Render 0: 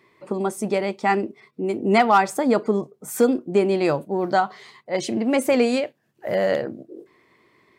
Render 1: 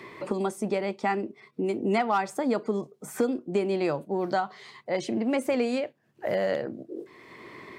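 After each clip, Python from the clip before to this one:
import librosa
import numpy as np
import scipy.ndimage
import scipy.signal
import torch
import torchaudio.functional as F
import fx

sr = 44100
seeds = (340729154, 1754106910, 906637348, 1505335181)

y = fx.high_shelf(x, sr, hz=9500.0, db=-6.5)
y = fx.band_squash(y, sr, depth_pct=70)
y = y * librosa.db_to_amplitude(-6.5)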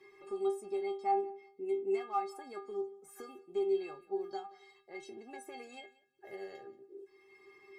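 y = fx.stiff_resonator(x, sr, f0_hz=390.0, decay_s=0.3, stiffness=0.008)
y = fx.echo_feedback(y, sr, ms=183, feedback_pct=16, wet_db=-21.5)
y = y * librosa.db_to_amplitude(1.5)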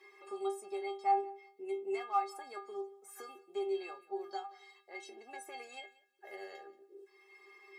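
y = scipy.signal.sosfilt(scipy.signal.butter(2, 560.0, 'highpass', fs=sr, output='sos'), x)
y = y * librosa.db_to_amplitude(3.0)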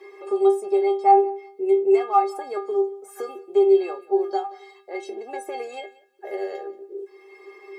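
y = fx.peak_eq(x, sr, hz=460.0, db=14.5, octaves=1.7)
y = y * librosa.db_to_amplitude(6.5)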